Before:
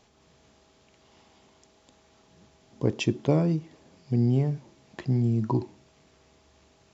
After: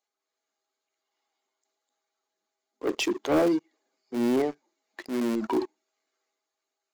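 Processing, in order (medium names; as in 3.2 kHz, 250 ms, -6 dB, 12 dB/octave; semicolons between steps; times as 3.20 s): expander on every frequency bin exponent 1.5; in parallel at -9 dB: Schmitt trigger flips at -21.5 dBFS; on the sum: steep high-pass 280 Hz 36 dB/octave; waveshaping leveller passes 3; transient shaper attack -8 dB, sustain +4 dB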